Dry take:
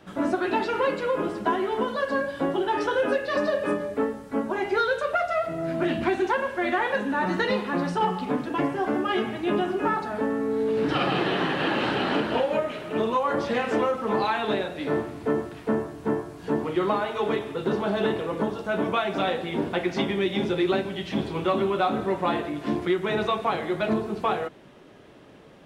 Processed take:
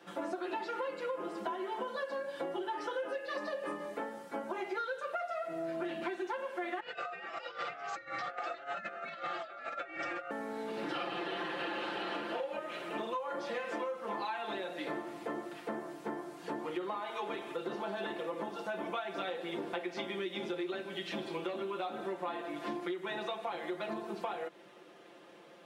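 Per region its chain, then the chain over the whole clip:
0:06.80–0:10.31: compressor whose output falls as the input rises −31 dBFS, ratio −0.5 + ring modulation 980 Hz + linear-phase brick-wall low-pass 8,100 Hz
whole clip: high-pass filter 340 Hz 12 dB per octave; comb filter 5.8 ms, depth 78%; downward compressor 6 to 1, threshold −30 dBFS; level −5 dB

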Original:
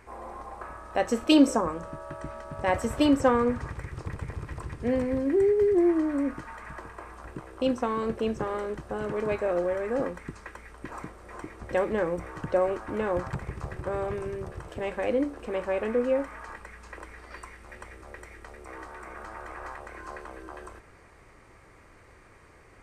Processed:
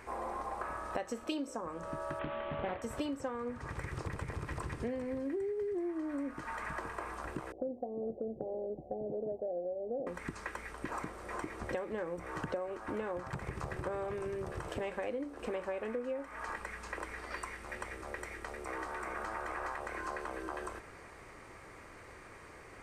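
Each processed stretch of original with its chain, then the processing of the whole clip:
0:02.19–0:02.82: variable-slope delta modulation 16 kbit/s + double-tracking delay 26 ms −6 dB + highs frequency-modulated by the lows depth 0.33 ms
0:07.52–0:10.07: Chebyshev low-pass with heavy ripple 770 Hz, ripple 3 dB + low-shelf EQ 340 Hz −9.5 dB
whole clip: low-shelf EQ 140 Hz −7 dB; downward compressor 12 to 1, threshold −38 dBFS; level +3.5 dB

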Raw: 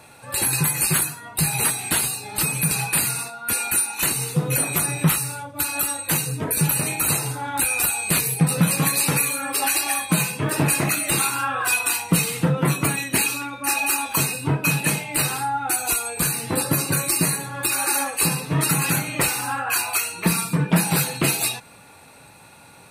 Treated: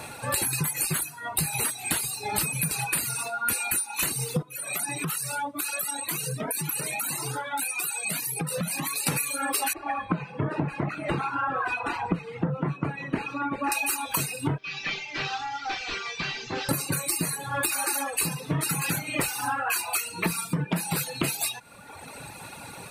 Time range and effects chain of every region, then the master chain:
0:04.42–0:09.07: high-pass filter 150 Hz 24 dB per octave + downward compressor, threshold −29 dBFS + flanger whose copies keep moving one way rising 1.8 Hz
0:09.73–0:13.72: low-pass filter 1,400 Hz + single-tap delay 379 ms −15.5 dB
0:14.58–0:16.69: linear delta modulator 32 kbit/s, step −27 dBFS + parametric band 2,700 Hz +8.5 dB 2.1 octaves + tuned comb filter 390 Hz, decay 0.57 s, mix 90%
whole clip: reverb reduction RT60 1 s; downward compressor 10 to 1, threshold −33 dBFS; level +8.5 dB

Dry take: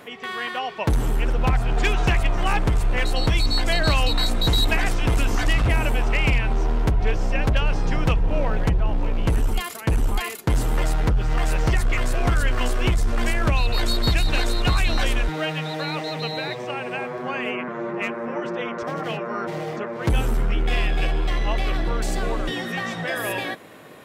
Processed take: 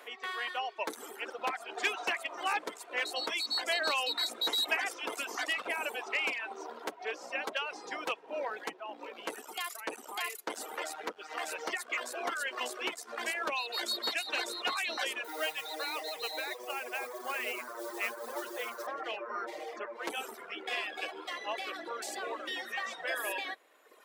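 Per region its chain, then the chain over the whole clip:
0:15.24–0:18.87: high-pass filter 120 Hz + noise that follows the level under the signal 13 dB
whole clip: Bessel high-pass filter 520 Hz, order 6; reverb reduction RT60 1.5 s; level −5.5 dB

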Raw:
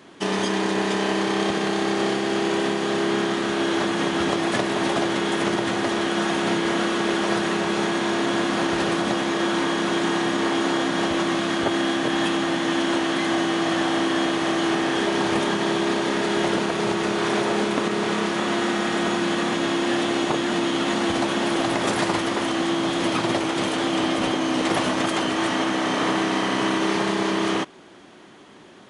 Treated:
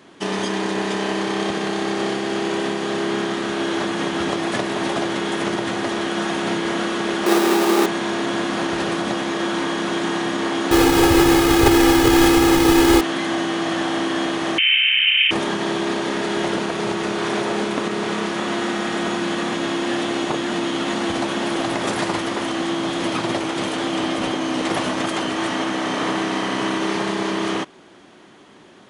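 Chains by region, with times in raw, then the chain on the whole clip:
0:07.26–0:07.86: each half-wave held at its own peak + high-pass filter 230 Hz 24 dB per octave + hollow resonant body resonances 370/830/1,200/3,800 Hz, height 11 dB, ringing for 100 ms
0:10.71–0:13.01: each half-wave held at its own peak + low-shelf EQ 120 Hz +10 dB + comb filter 2.4 ms, depth 97%
0:14.58–0:15.31: variable-slope delta modulation 64 kbit/s + drawn EQ curve 110 Hz 0 dB, 1,200 Hz +11 dB, 2,900 Hz −23 dB + voice inversion scrambler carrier 3,400 Hz
whole clip: no processing

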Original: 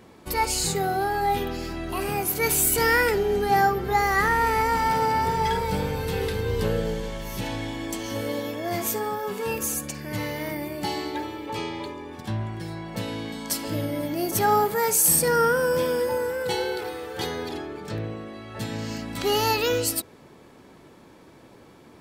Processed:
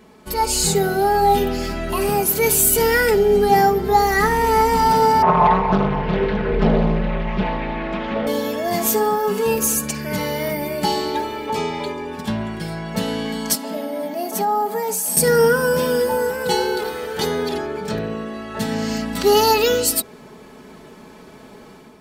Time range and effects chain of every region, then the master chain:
0:05.22–0:08.27: low-pass filter 2,600 Hz 24 dB per octave + comb filter 5.6 ms, depth 77% + highs frequency-modulated by the lows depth 0.87 ms
0:13.55–0:15.17: Chebyshev high-pass with heavy ripple 180 Hz, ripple 9 dB + downward compressor, threshold −26 dBFS
whole clip: comb filter 4.7 ms, depth 67%; dynamic equaliser 1,900 Hz, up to −4 dB, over −36 dBFS, Q 0.85; automatic gain control gain up to 7 dB

